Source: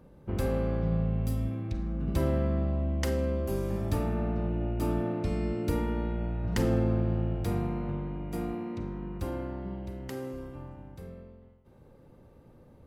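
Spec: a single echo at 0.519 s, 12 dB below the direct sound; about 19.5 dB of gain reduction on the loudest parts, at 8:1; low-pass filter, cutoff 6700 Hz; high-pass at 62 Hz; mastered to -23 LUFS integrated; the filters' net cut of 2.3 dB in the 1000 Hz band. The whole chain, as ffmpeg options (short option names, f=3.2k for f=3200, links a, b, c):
-af "highpass=62,lowpass=6.7k,equalizer=f=1k:t=o:g=-3,acompressor=threshold=-44dB:ratio=8,aecho=1:1:519:0.251,volume=25dB"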